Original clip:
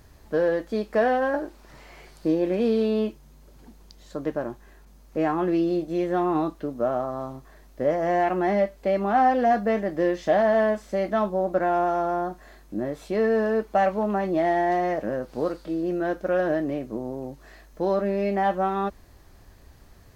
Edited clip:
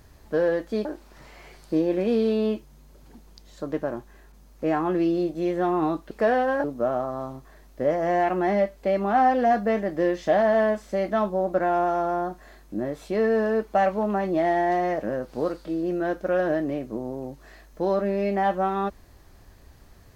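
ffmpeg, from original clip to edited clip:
ffmpeg -i in.wav -filter_complex "[0:a]asplit=4[link_01][link_02][link_03][link_04];[link_01]atrim=end=0.852[link_05];[link_02]atrim=start=1.378:end=6.642[link_06];[link_03]atrim=start=0.848:end=1.382[link_07];[link_04]atrim=start=6.638[link_08];[link_05][link_06]acrossfade=duration=0.004:curve1=hsin:curve2=hsin[link_09];[link_09][link_07]acrossfade=duration=0.004:curve1=hsin:curve2=hsin[link_10];[link_10][link_08]acrossfade=duration=0.004:curve1=hsin:curve2=hsin" out.wav

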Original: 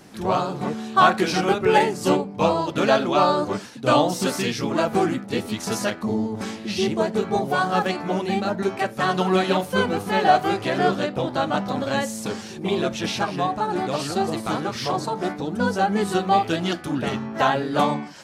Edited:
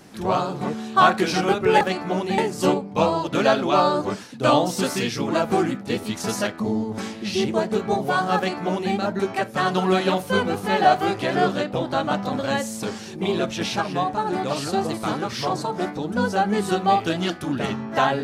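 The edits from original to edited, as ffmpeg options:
ffmpeg -i in.wav -filter_complex "[0:a]asplit=3[link_01][link_02][link_03];[link_01]atrim=end=1.812[link_04];[link_02]atrim=start=7.798:end=8.372[link_05];[link_03]atrim=start=1.808[link_06];[link_04][link_05]acrossfade=duration=0.004:curve1=hsin:curve2=hsin[link_07];[link_07][link_06]acrossfade=duration=0.004:curve1=hsin:curve2=hsin" out.wav

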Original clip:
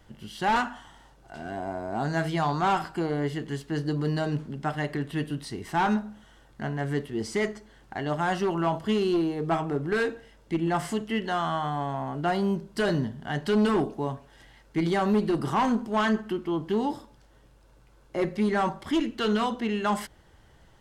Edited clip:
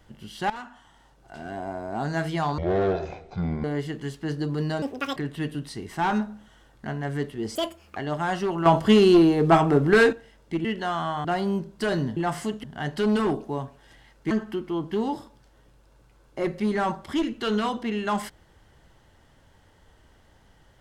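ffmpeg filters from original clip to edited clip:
ffmpeg -i in.wav -filter_complex "[0:a]asplit=15[link_01][link_02][link_03][link_04][link_05][link_06][link_07][link_08][link_09][link_10][link_11][link_12][link_13][link_14][link_15];[link_01]atrim=end=0.5,asetpts=PTS-STARTPTS,afade=type=out:start_time=0.496:duration=0.004:curve=hsin:silence=0.133352[link_16];[link_02]atrim=start=0.5:end=2.584,asetpts=PTS-STARTPTS,afade=type=in:duration=0.85:silence=0.133352[link_17];[link_03]atrim=start=2.58:end=3.11,asetpts=PTS-STARTPTS,asetrate=22050,aresample=44100[link_18];[link_04]atrim=start=3.106:end=4.294[link_19];[link_05]atrim=start=4.29:end=4.92,asetpts=PTS-STARTPTS,asetrate=81144,aresample=44100,atrim=end_sample=15099,asetpts=PTS-STARTPTS[link_20];[link_06]atrim=start=4.916:end=7.314[link_21];[link_07]atrim=start=7.31:end=7.96,asetpts=PTS-STARTPTS,asetrate=69237,aresample=44100[link_22];[link_08]atrim=start=7.956:end=8.652[link_23];[link_09]atrim=start=8.648:end=10.122,asetpts=PTS-STARTPTS,volume=9dB[link_24];[link_10]atrim=start=10.118:end=10.642[link_25];[link_11]atrim=start=11.108:end=11.712[link_26];[link_12]atrim=start=12.208:end=13.132[link_27];[link_13]atrim=start=10.638:end=11.112[link_28];[link_14]atrim=start=13.128:end=14.802[link_29];[link_15]atrim=start=16.078[link_30];[link_16][link_17]concat=n=2:v=0:a=1[link_31];[link_31][link_18]acrossfade=duration=0.004:curve1=hsin:curve2=hsin[link_32];[link_32][link_19]acrossfade=duration=0.004:curve1=hsin:curve2=hsin[link_33];[link_33][link_20]acrossfade=duration=0.004:curve1=hsin:curve2=hsin[link_34];[link_34][link_21]acrossfade=duration=0.004:curve1=hsin:curve2=hsin[link_35];[link_35][link_22]acrossfade=duration=0.004:curve1=hsin:curve2=hsin[link_36];[link_36][link_23]acrossfade=duration=0.004:curve1=hsin:curve2=hsin[link_37];[link_37][link_24]acrossfade=duration=0.004:curve1=hsin:curve2=hsin[link_38];[link_38][link_25]acrossfade=duration=0.004:curve1=hsin:curve2=hsin[link_39];[link_39][link_26]acrossfade=duration=0.004:curve1=hsin:curve2=hsin[link_40];[link_40][link_27]acrossfade=duration=0.004:curve1=hsin:curve2=hsin[link_41];[link_41][link_28]acrossfade=duration=0.004:curve1=hsin:curve2=hsin[link_42];[link_42][link_29]acrossfade=duration=0.004:curve1=hsin:curve2=hsin[link_43];[link_43][link_30]acrossfade=duration=0.004:curve1=hsin:curve2=hsin" out.wav

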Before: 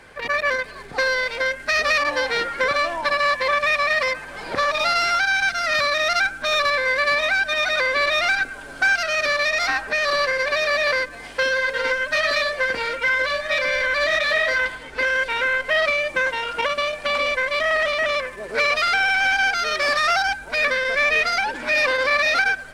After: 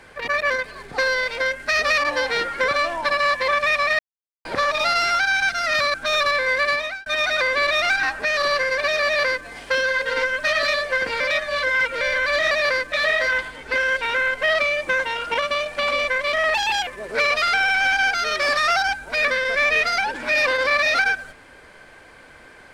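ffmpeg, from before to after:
ffmpeg -i in.wav -filter_complex "[0:a]asplit=12[link_01][link_02][link_03][link_04][link_05][link_06][link_07][link_08][link_09][link_10][link_11][link_12];[link_01]atrim=end=3.99,asetpts=PTS-STARTPTS,afade=type=out:start_time=3.986:duration=0.004:curve=hsin[link_13];[link_02]atrim=start=3.99:end=4.45,asetpts=PTS-STARTPTS,volume=0[link_14];[link_03]atrim=start=4.45:end=5.942,asetpts=PTS-STARTPTS,afade=type=in:duration=0.004:curve=hsin[link_15];[link_04]atrim=start=6.328:end=7.45,asetpts=PTS-STARTPTS,afade=type=out:start_time=0.712:duration=0.41[link_16];[link_05]atrim=start=7.45:end=8.422,asetpts=PTS-STARTPTS,afade=type=in:duration=0.004:curve=hsin[link_17];[link_06]atrim=start=9.708:end=12.882[link_18];[link_07]atrim=start=12.878:end=13.692,asetpts=PTS-STARTPTS,areverse[link_19];[link_08]atrim=start=13.688:end=14.192[link_20];[link_09]atrim=start=10.728:end=11.142[link_21];[link_10]atrim=start=14.188:end=17.814[link_22];[link_11]atrim=start=17.81:end=18.27,asetpts=PTS-STARTPTS,asetrate=61299,aresample=44100,atrim=end_sample=14594,asetpts=PTS-STARTPTS[link_23];[link_12]atrim=start=18.266[link_24];[link_13][link_14][link_15]concat=n=3:v=0:a=1[link_25];[link_16][link_17]concat=n=2:v=0:a=1[link_26];[link_25][link_26]acrossfade=duration=0.004:curve1=hsin:curve2=hsin[link_27];[link_27][link_18]acrossfade=duration=0.004:curve1=hsin:curve2=hsin[link_28];[link_28][link_19]acrossfade=duration=0.004:curve1=hsin:curve2=hsin[link_29];[link_29][link_20]acrossfade=duration=0.004:curve1=hsin:curve2=hsin[link_30];[link_30][link_21]acrossfade=duration=0.004:curve1=hsin:curve2=hsin[link_31];[link_31][link_22]acrossfade=duration=0.004:curve1=hsin:curve2=hsin[link_32];[link_32][link_23]acrossfade=duration=0.004:curve1=hsin:curve2=hsin[link_33];[link_33][link_24]acrossfade=duration=0.004:curve1=hsin:curve2=hsin" out.wav

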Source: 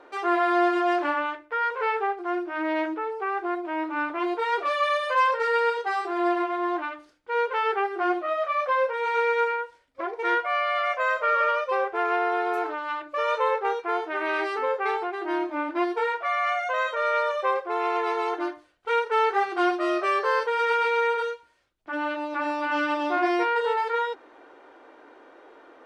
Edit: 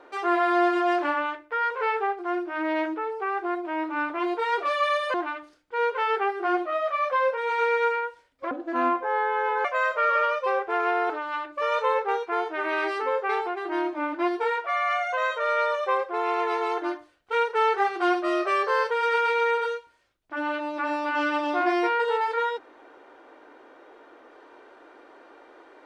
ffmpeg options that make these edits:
ffmpeg -i in.wav -filter_complex "[0:a]asplit=5[link_01][link_02][link_03][link_04][link_05];[link_01]atrim=end=5.142[link_06];[link_02]atrim=start=6.698:end=10.074[link_07];[link_03]atrim=start=10.07:end=10.9,asetpts=PTS-STARTPTS,asetrate=32193,aresample=44100,atrim=end_sample=50141,asetpts=PTS-STARTPTS[link_08];[link_04]atrim=start=10.896:end=12.352[link_09];[link_05]atrim=start=12.658[link_10];[link_06][link_07]acrossfade=duration=0.004:curve1=hsin:curve2=hsin[link_11];[link_11][link_08]acrossfade=duration=0.004:curve1=hsin:curve2=hsin[link_12];[link_12][link_09]acrossfade=duration=0.004:curve1=hsin:curve2=hsin[link_13];[link_13][link_10]acrossfade=duration=0.004:curve1=hsin:curve2=hsin" out.wav

